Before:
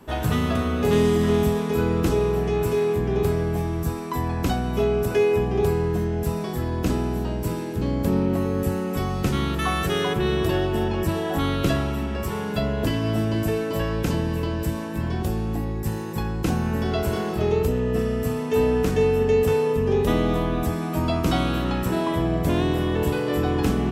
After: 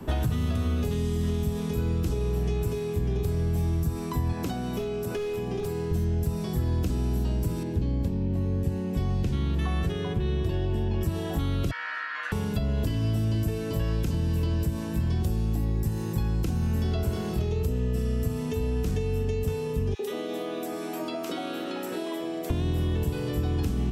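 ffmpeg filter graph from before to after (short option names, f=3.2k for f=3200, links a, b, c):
-filter_complex "[0:a]asettb=1/sr,asplit=3[a][b][c];[a]atrim=end=4.324[d];[b]atrim=start=4.32:end=5.91,asetpts=PTS-STARTPTS,afade=t=in:d=0.004:c=qsin,afade=t=out:st=1.586:d=0.004:c=qsin,highpass=230,volume=17.5dB,asoftclip=hard,volume=-17.5dB[e];[c]atrim=start=5.906[f];[d][e]acrossfade=d=0.004:c1=hsin:c2=qsin[g];[g][f]acrossfade=d=0.004:c1=qsin:c2=hsin,asettb=1/sr,asplit=3[h][i][j];[h]atrim=end=7.634[k];[i]atrim=start=7.63:end=11.01,asetpts=PTS-STARTPTS,afade=t=in:d=0.004:c=qsin,afade=t=out:st=3.376:d=0.004:c=qsin,lowpass=f=2.2k:p=1,bandreject=f=1.3k:w=10[l];[j]atrim=start=11.006[m];[k][l]acrossfade=d=0.004:c1=hsin:c2=qsin[n];[n][m]acrossfade=d=0.004:c1=qsin:c2=hsin,asettb=1/sr,asplit=3[o][p][q];[o]atrim=end=11.714[r];[p]atrim=start=11.71:end=12.32,asetpts=PTS-STARTPTS,afade=t=in:d=0.004:c=qsin,afade=t=out:st=0.606:d=0.004:c=qsin,aeval=exprs='val(0)*sin(2*PI*1600*n/s)':c=same,highpass=790,lowpass=3.4k,asplit=2[s][t];[t]adelay=16,volume=-7dB[u];[s][u]amix=inputs=2:normalize=0,atrim=end_sample=26901[v];[q]atrim=start=12.316[w];[r][v]acrossfade=d=0.004:c1=hsin:c2=qsin[x];[x][w]acrossfade=d=0.004:c1=qsin:c2=hsin,asettb=1/sr,asplit=3[y][z][aa];[y]atrim=end=19.944[ab];[z]atrim=start=19.94:end=22.5,asetpts=PTS-STARTPTS,afade=t=in:d=0.004:c=qsin,afade=t=out:st=2.556:d=0.004:c=qsin,highpass=f=330:w=0.5412,highpass=f=330:w=1.3066,acrossover=split=1100[ac][ad];[ac]adelay=50[ae];[ae][ad]amix=inputs=2:normalize=0,atrim=end_sample=112896[af];[aa]atrim=start=22.496[ag];[ab][af]acrossfade=d=0.004:c1=hsin:c2=qsin[ah];[ah][ag]acrossfade=d=0.004:c1=qsin:c2=hsin,acompressor=threshold=-23dB:ratio=6,lowshelf=f=330:g=10.5,acrossover=split=110|3000[ai][aj][ak];[ai]acompressor=threshold=-29dB:ratio=4[al];[aj]acompressor=threshold=-34dB:ratio=4[am];[ak]acompressor=threshold=-46dB:ratio=4[an];[al][am][an]amix=inputs=3:normalize=0,volume=2dB"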